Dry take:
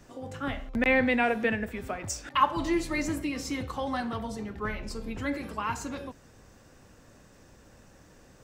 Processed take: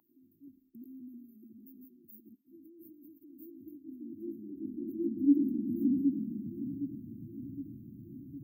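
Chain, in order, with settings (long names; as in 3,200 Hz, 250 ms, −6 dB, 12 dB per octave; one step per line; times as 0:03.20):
tape delay 764 ms, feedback 64%, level −6 dB, low-pass 2,400 Hz
0:01.86–0:03.89: compressor whose output falls as the input rises −35 dBFS, ratio −1
linear-phase brick-wall band-stop 370–13,000 Hz
high-pass filter sweep 910 Hz → 120 Hz, 0:03.35–0:07.05
level +2.5 dB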